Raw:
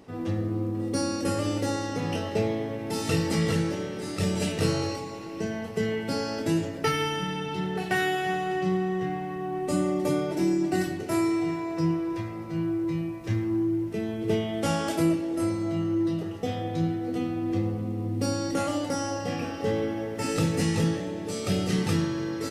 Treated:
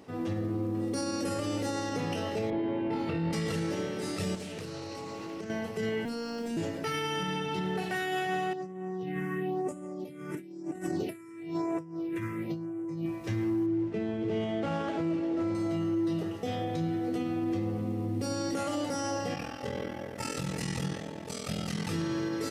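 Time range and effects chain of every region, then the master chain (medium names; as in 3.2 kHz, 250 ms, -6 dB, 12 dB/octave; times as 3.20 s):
2.50–3.33 s: distance through air 410 m + flutter echo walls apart 4.1 m, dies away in 0.61 s
4.35–5.50 s: compression 20:1, threshold -34 dBFS + loudspeaker Doppler distortion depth 0.22 ms
6.05–6.57 s: bass shelf 190 Hz +8 dB + word length cut 10-bit, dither none + robot voice 233 Hz
8.53–13.06 s: compressor with a negative ratio -32 dBFS, ratio -0.5 + phase shifter stages 4, 1 Hz, lowest notch 660–4400 Hz + high-pass 120 Hz
13.66–15.55 s: median filter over 9 samples + distance through air 100 m
19.34–21.89 s: peaking EQ 370 Hz -11.5 dB 0.59 oct + ring modulator 21 Hz
whole clip: bass shelf 81 Hz -9 dB; peak limiter -23.5 dBFS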